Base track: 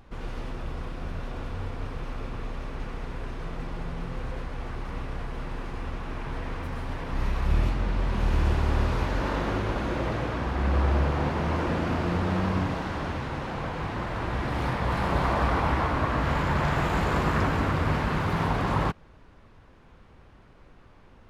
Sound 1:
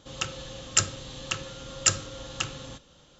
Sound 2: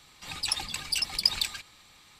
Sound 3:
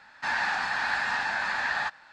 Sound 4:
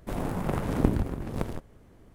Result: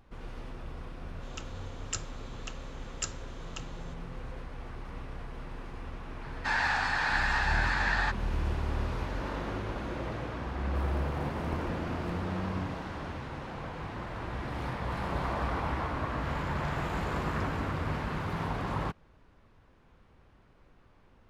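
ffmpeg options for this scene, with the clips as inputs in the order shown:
-filter_complex "[0:a]volume=0.422[s0];[1:a]atrim=end=3.19,asetpts=PTS-STARTPTS,volume=0.211,afade=t=in:d=0.004:c=hsin,afade=t=out:st=3.186:d=0.004:c=hsin,adelay=1160[s1];[3:a]atrim=end=2.12,asetpts=PTS-STARTPTS,volume=0.891,afade=t=in:d=0.004:c=hsin,afade=t=out:st=2.116:d=0.004:c=hsin,adelay=6220[s2];[4:a]atrim=end=2.14,asetpts=PTS-STARTPTS,volume=0.178,afade=t=in:d=0.004:c=hsin,afade=t=out:st=2.136:d=0.004:c=hsin,adelay=10680[s3];[s0][s1][s2][s3]amix=inputs=4:normalize=0"

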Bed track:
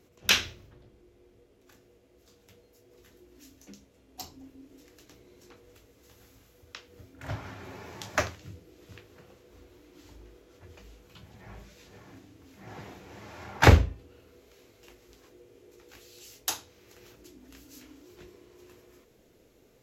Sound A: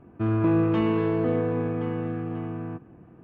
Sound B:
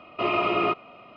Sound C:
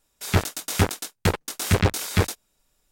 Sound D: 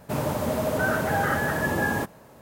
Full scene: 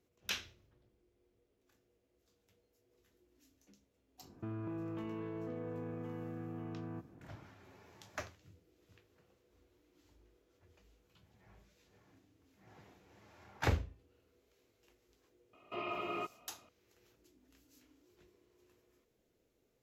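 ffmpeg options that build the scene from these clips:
-filter_complex "[0:a]volume=0.158[s0];[1:a]acompressor=threshold=0.0316:ratio=6:attack=3.2:release=140:knee=1:detection=peak,atrim=end=3.23,asetpts=PTS-STARTPTS,volume=0.355,afade=t=in:d=0.004:c=hsin,afade=t=out:st=3.226:d=0.004:c=hsin,adelay=4230[s1];[2:a]atrim=end=1.16,asetpts=PTS-STARTPTS,volume=0.158,afade=t=in:d=0.004:c=hsin,afade=t=out:st=1.156:d=0.004:c=hsin,adelay=15530[s2];[s0][s1][s2]amix=inputs=3:normalize=0"

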